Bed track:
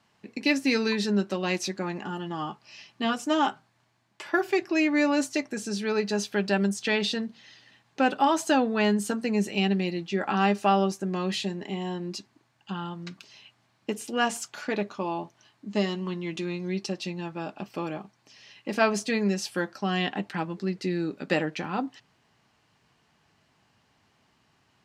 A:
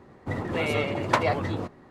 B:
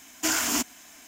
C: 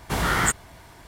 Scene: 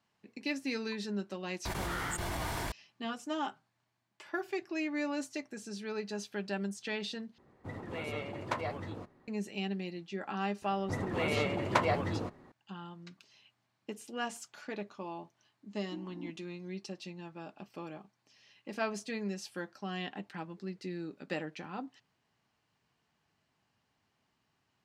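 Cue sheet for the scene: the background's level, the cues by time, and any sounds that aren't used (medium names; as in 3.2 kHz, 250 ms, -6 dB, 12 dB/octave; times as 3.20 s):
bed track -11.5 dB
1.65 s: add C -17.5 dB + level flattener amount 100%
7.38 s: replace with A -12.5 dB
10.62 s: add A -5.5 dB
15.68 s: add B -10 dB + cascade formant filter u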